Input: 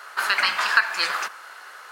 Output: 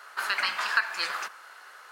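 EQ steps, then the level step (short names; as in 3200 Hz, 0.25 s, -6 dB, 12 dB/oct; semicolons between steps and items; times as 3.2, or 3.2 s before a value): HPF 120 Hz 12 dB/oct; -6.5 dB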